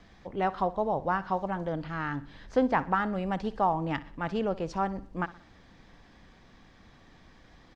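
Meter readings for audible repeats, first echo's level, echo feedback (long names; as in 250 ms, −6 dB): 3, −18.0 dB, 45%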